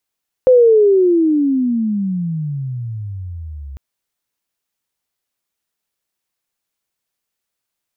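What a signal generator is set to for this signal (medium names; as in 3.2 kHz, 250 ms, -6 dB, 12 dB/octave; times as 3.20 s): sweep logarithmic 520 Hz -> 66 Hz -5 dBFS -> -28 dBFS 3.30 s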